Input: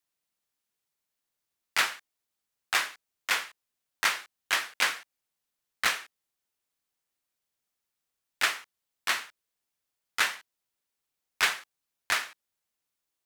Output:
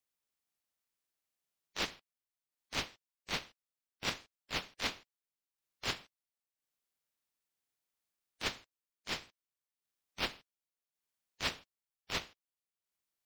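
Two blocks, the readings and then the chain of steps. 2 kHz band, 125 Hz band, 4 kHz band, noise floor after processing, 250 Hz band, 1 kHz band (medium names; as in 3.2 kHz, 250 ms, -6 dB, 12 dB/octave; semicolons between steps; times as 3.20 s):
-13.5 dB, no reading, -7.5 dB, under -85 dBFS, +5.0 dB, -11.5 dB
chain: coarse spectral quantiser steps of 30 dB; ring modulator 1.1 kHz; transient shaper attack -12 dB, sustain -8 dB; trim -1 dB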